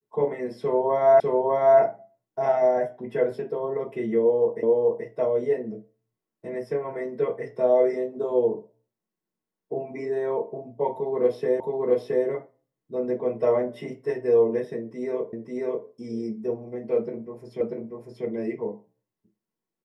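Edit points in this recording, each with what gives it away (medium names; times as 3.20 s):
1.20 s: repeat of the last 0.6 s
4.63 s: repeat of the last 0.43 s
11.60 s: repeat of the last 0.67 s
15.33 s: repeat of the last 0.54 s
17.61 s: repeat of the last 0.64 s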